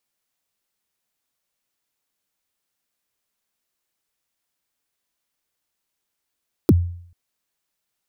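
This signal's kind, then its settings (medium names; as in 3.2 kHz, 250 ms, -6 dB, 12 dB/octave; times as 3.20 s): kick drum length 0.44 s, from 420 Hz, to 87 Hz, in 38 ms, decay 0.60 s, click on, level -7 dB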